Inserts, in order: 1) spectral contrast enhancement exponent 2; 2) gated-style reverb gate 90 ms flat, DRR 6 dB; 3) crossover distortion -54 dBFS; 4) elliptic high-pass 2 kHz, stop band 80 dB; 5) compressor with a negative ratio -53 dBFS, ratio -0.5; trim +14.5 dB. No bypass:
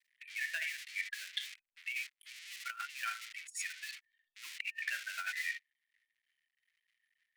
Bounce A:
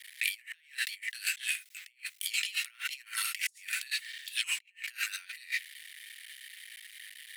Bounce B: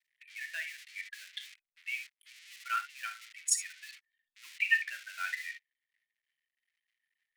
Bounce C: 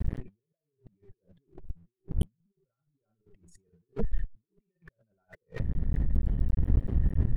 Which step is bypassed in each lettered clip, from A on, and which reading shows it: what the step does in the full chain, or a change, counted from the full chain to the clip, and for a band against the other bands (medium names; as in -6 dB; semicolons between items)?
1, 1 kHz band -11.5 dB; 5, crest factor change +3.0 dB; 4, 1 kHz band +11.0 dB